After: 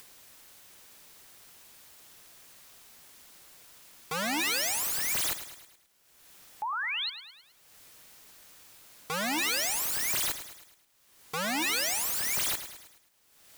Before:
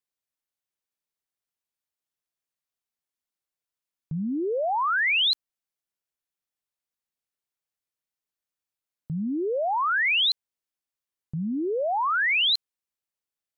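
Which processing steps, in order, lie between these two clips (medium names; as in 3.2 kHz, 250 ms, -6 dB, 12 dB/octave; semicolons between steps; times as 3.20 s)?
painted sound rise, 6.62–7.10 s, 820–4500 Hz -41 dBFS; upward compressor, threshold -39 dBFS; integer overflow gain 33.5 dB; bit-crushed delay 106 ms, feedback 55%, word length 11-bit, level -11.5 dB; trim +8 dB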